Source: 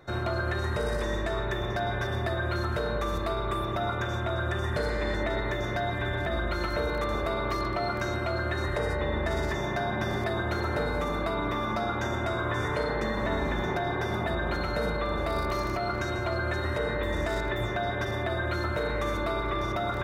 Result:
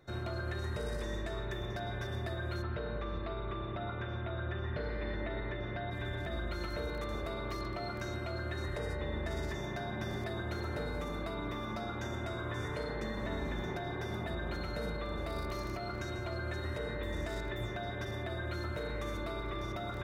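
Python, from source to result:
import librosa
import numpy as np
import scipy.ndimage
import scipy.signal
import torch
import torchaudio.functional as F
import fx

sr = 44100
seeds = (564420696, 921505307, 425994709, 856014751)

y = fx.lowpass(x, sr, hz=3500.0, slope=24, at=(2.61, 5.9), fade=0.02)
y = fx.peak_eq(y, sr, hz=1000.0, db=-5.5, octaves=2.1)
y = F.gain(torch.from_numpy(y), -6.5).numpy()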